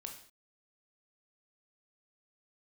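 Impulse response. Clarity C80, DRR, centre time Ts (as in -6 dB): 11.0 dB, 2.5 dB, 22 ms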